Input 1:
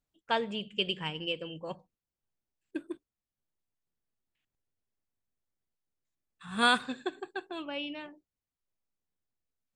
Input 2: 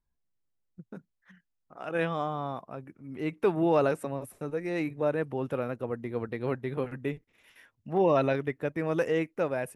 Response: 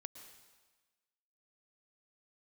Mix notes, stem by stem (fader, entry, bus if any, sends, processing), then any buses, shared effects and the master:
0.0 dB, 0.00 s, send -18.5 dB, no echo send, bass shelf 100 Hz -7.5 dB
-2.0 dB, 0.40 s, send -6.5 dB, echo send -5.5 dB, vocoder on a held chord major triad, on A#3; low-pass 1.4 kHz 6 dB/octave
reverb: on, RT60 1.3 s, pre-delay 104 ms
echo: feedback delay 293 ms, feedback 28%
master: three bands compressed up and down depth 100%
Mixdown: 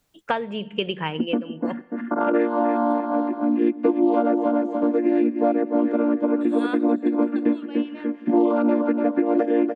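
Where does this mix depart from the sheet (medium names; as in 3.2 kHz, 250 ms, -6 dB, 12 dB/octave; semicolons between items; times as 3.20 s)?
stem 1 0.0 dB -> -11.0 dB; stem 2 -2.0 dB -> +8.0 dB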